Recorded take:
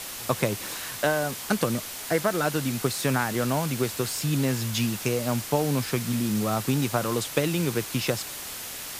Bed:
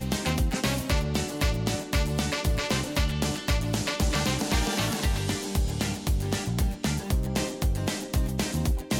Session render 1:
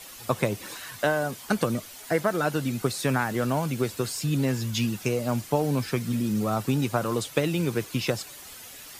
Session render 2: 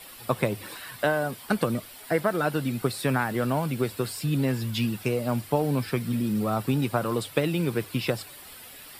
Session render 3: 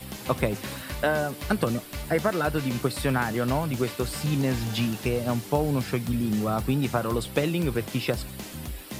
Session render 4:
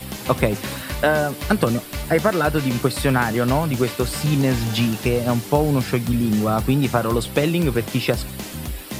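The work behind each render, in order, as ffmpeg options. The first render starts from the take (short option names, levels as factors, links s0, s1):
-af "afftdn=nr=10:nf=-37"
-af "equalizer=f=6400:w=3.5:g=-14,bandreject=f=50:t=h:w=6,bandreject=f=100:t=h:w=6"
-filter_complex "[1:a]volume=0.299[s0];[0:a][s0]amix=inputs=2:normalize=0"
-af "volume=2.11,alimiter=limit=0.794:level=0:latency=1"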